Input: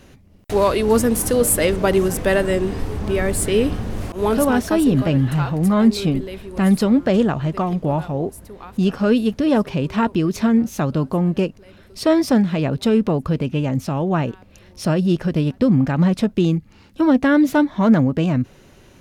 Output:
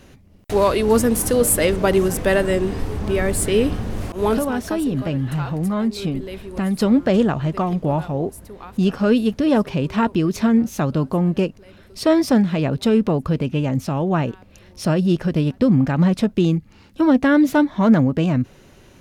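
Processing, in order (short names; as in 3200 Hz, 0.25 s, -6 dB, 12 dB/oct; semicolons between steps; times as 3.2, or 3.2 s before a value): 4.38–6.79 compressor 2.5:1, threshold -21 dBFS, peak gain reduction 8.5 dB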